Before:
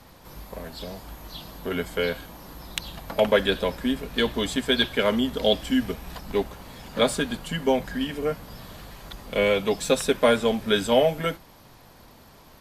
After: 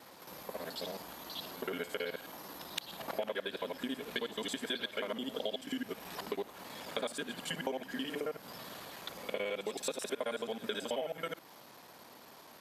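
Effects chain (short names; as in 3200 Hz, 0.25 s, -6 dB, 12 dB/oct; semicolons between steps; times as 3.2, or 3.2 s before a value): local time reversal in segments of 54 ms; Bessel high-pass 310 Hz, order 2; compressor 6:1, threshold -33 dBFS, peak gain reduction 16.5 dB; pre-echo 0.167 s -16.5 dB; gain -1.5 dB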